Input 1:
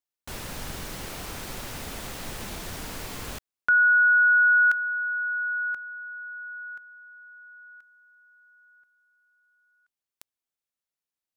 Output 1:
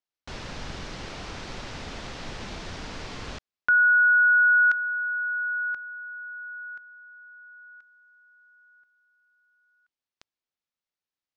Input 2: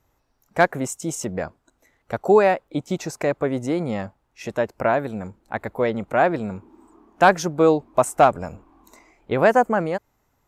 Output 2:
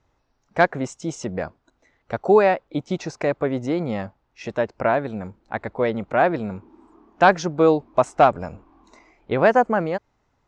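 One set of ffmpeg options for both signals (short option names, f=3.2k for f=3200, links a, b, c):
-af "lowpass=f=5.8k:w=0.5412,lowpass=f=5.8k:w=1.3066"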